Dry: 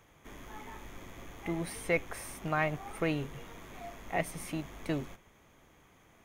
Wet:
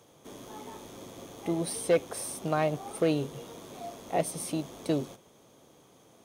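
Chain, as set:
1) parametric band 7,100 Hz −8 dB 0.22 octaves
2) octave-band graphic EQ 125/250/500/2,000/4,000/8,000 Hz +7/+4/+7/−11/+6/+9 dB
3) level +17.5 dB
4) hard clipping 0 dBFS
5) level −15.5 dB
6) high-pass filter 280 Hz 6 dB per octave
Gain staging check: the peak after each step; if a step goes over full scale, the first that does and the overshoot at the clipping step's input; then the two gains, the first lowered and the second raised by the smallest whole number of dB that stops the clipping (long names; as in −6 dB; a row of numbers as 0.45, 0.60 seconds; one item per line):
−17.0, −12.5, +5.0, 0.0, −15.5, −13.5 dBFS
step 3, 5.0 dB
step 3 +12.5 dB, step 5 −10.5 dB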